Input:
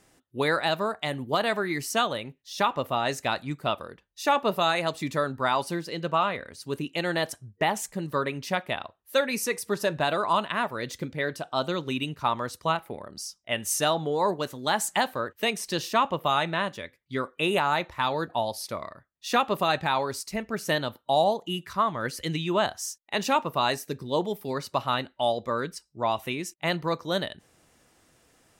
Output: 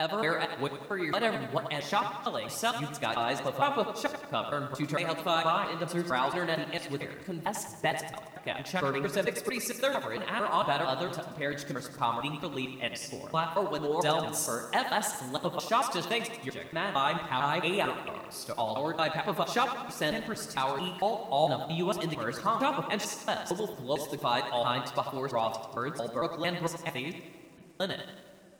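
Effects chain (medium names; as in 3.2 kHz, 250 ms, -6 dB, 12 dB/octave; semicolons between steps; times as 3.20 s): slices played last to first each 226 ms, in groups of 4; reverberation RT60 2.9 s, pre-delay 6 ms, DRR 13 dB; flange 0.95 Hz, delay 2.3 ms, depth 5.5 ms, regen +61%; bit-crushed delay 91 ms, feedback 55%, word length 9-bit, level -9 dB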